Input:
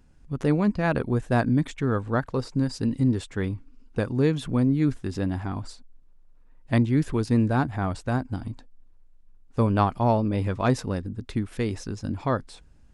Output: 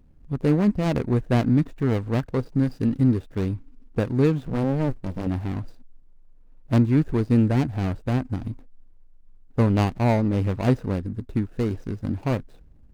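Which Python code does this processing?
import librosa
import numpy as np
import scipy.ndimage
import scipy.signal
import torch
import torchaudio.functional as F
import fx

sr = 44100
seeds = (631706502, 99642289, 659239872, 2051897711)

y = scipy.ndimage.median_filter(x, 41, mode='constant')
y = fx.running_max(y, sr, window=65, at=(4.45, 5.27))
y = y * 10.0 ** (3.0 / 20.0)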